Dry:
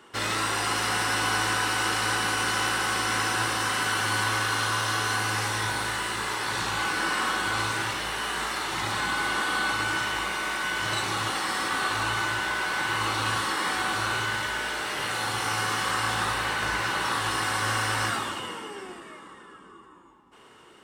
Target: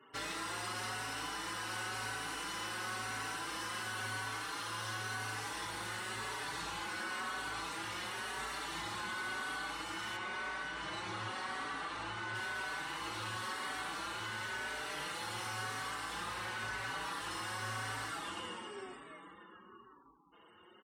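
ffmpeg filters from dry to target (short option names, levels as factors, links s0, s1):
-filter_complex "[0:a]asettb=1/sr,asplit=3[s0][s1][s2];[s0]atrim=end=10.164[s3];[s1]atrim=start=10.16:end=12.35,asetpts=PTS-STARTPTS,afade=t=in:d=0.004:c=qsin,afade=t=out:st=2.186:d=0.004:c=qsin,highshelf=f=4700:g=-10[s4];[s2]atrim=start=12.346[s5];[s3][s4]acrossfade=d=0.004:c1=hsin:c2=qsin[s6];[s6][s5]acrossfade=d=0.004:c1=qsin:c2=hsin,afftfilt=real='re*gte(hypot(re,im),0.00224)':imag='im*gte(hypot(re,im),0.00224)':win_size=1024:overlap=0.75,acompressor=threshold=0.0398:ratio=6,asoftclip=type=tanh:threshold=0.0668,asplit=2[s7][s8];[s8]adelay=4.8,afreqshift=0.95[s9];[s7][s9]amix=inputs=2:normalize=1,volume=0.562"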